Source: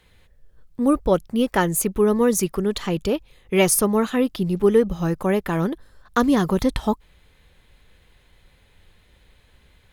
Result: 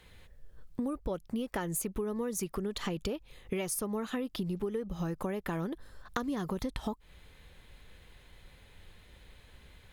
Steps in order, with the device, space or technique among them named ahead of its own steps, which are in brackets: serial compression, peaks first (compression 5:1, threshold -27 dBFS, peak gain reduction 14 dB; compression 2.5:1, threshold -33 dBFS, peak gain reduction 6.5 dB)

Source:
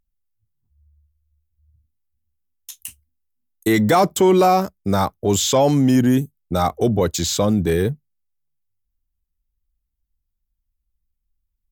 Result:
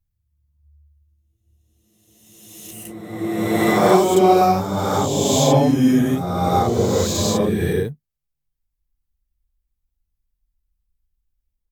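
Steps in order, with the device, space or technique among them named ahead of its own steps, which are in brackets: reverse reverb (reverse; reverberation RT60 1.8 s, pre-delay 27 ms, DRR -6.5 dB; reverse); trim -7 dB

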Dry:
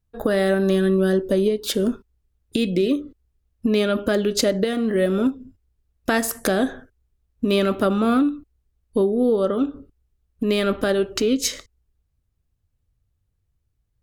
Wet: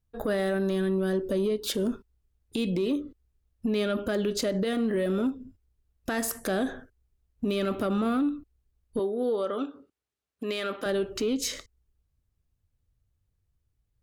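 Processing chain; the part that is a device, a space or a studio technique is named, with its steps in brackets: 8.99–10.86 s: frequency weighting A; soft clipper into limiter (saturation -9.5 dBFS, distortion -25 dB; peak limiter -17.5 dBFS, peak gain reduction 7 dB); trim -3 dB

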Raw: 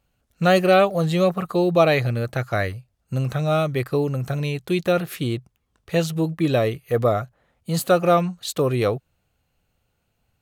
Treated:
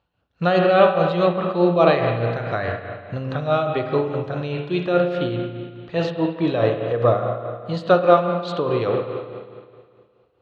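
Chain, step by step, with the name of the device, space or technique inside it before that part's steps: combo amplifier with spring reverb and tremolo (spring tank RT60 2 s, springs 34/53 ms, chirp 35 ms, DRR 2.5 dB; tremolo 4.8 Hz, depth 51%; cabinet simulation 81–4100 Hz, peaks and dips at 140 Hz -6 dB, 230 Hz -7 dB, 980 Hz +5 dB, 2.2 kHz -6 dB); trim +2 dB

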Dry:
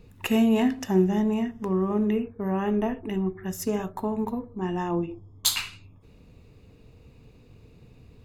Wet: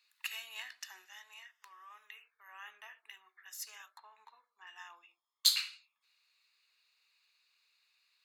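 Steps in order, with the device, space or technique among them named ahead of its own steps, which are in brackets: 1.05–2.48 s: high-pass 580 Hz 6 dB/octave; headphones lying on a table (high-pass 1.4 kHz 24 dB/octave; peaking EQ 4.3 kHz +10.5 dB 0.3 oct); 3.93–4.67 s: low-pass that closes with the level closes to 2.5 kHz, closed at -45.5 dBFS; bass shelf 370 Hz +4 dB; trim -8 dB

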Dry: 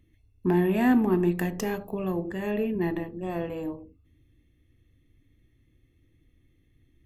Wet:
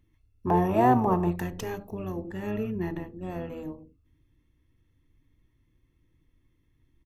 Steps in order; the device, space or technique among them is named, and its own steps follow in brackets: 0.47–1.36 s: high-order bell 840 Hz +14 dB 1.3 oct; octave pedal (harmony voices -12 st -5 dB); trim -5 dB

